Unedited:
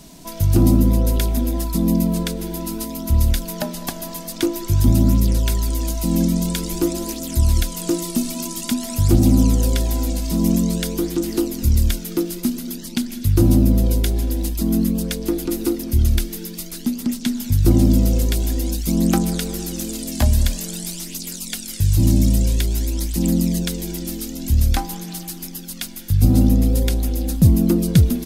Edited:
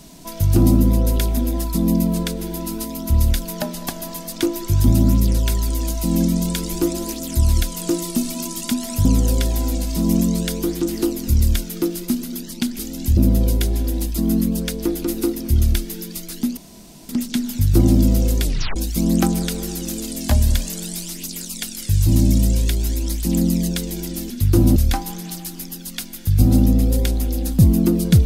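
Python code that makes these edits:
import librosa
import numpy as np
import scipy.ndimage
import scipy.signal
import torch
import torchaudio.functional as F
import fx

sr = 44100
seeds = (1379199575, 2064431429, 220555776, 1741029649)

y = fx.edit(x, sr, fx.cut(start_s=9.05, length_s=0.35),
    fx.swap(start_s=13.14, length_s=0.46, other_s=24.21, other_length_s=0.38),
    fx.insert_room_tone(at_s=17.0, length_s=0.52),
    fx.tape_stop(start_s=18.34, length_s=0.33), tone=tone)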